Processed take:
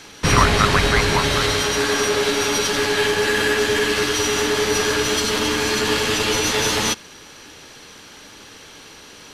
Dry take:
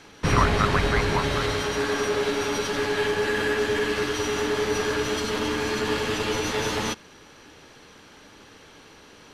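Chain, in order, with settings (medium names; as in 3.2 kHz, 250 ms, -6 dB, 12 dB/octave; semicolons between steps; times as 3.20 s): treble shelf 2.8 kHz +9.5 dB; trim +4 dB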